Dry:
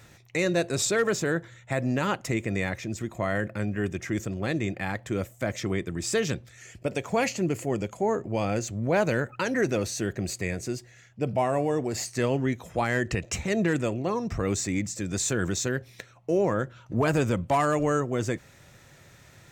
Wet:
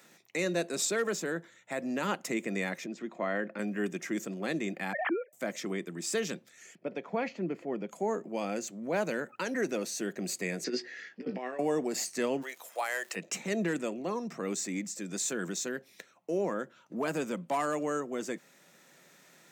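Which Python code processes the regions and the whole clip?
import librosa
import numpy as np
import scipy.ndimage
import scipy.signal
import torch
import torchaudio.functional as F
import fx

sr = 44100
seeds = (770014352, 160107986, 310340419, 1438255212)

y = fx.chain(x, sr, fx.highpass(hz=190.0, slope=12),
    fx.air_absorb(metres=170.0), at=(2.86, 3.59))
y = fx.chain(y, sr, fx.sine_speech(),
    fx.lowpass(hz=2100.0, slope=24),
    fx.pre_swell(db_per_s=41.0), at=(4.93, 5.33))
y = fx.chain(y, sr, fx.air_absorb(metres=300.0),
    fx.notch(hz=2800.0, q=15.0), at=(6.75, 7.89))
y = fx.chain(y, sr, fx.cabinet(low_hz=250.0, low_slope=12, high_hz=5000.0, hz=(320.0, 450.0, 650.0, 1000.0, 1800.0, 4800.0), db=(3, 5, -6, -4, 10, 6)),
    fx.over_compress(threshold_db=-32.0, ratio=-0.5),
    fx.doubler(ms=16.0, db=-8.0), at=(10.64, 11.59))
y = fx.highpass(y, sr, hz=540.0, slope=24, at=(12.41, 13.15), fade=0.02)
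y = fx.peak_eq(y, sr, hz=12000.0, db=11.5, octaves=0.82, at=(12.41, 13.15), fade=0.02)
y = fx.dmg_crackle(y, sr, seeds[0], per_s=280.0, level_db=-40.0, at=(12.41, 13.15), fade=0.02)
y = scipy.signal.sosfilt(scipy.signal.butter(8, 170.0, 'highpass', fs=sr, output='sos'), y)
y = fx.high_shelf(y, sr, hz=8200.0, db=5.5)
y = fx.rider(y, sr, range_db=10, speed_s=2.0)
y = F.gain(torch.from_numpy(y), -6.0).numpy()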